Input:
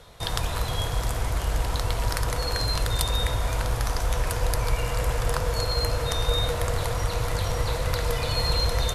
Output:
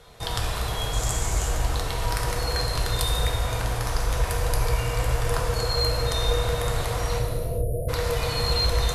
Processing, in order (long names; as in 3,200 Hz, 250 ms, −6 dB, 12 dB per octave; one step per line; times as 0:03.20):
0:00.93–0:01.49: parametric band 7,100 Hz +13.5 dB 0.56 octaves
0:07.19–0:07.89: time-frequency box erased 730–9,300 Hz
reverb whose tail is shaped and stops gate 460 ms falling, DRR 0 dB
level −2 dB